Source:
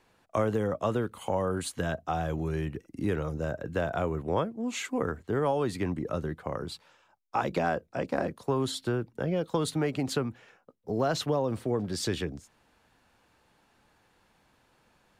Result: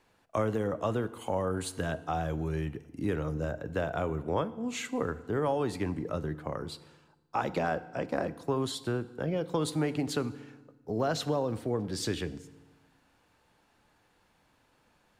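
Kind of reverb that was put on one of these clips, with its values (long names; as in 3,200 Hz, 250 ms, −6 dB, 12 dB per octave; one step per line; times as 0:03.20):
feedback delay network reverb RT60 1.2 s, low-frequency decay 1.25×, high-frequency decay 0.8×, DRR 14 dB
level −2 dB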